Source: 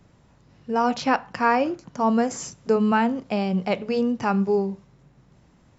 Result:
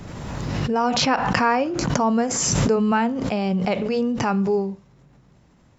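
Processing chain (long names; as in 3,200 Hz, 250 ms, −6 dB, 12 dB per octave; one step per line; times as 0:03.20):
background raised ahead of every attack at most 23 dB per second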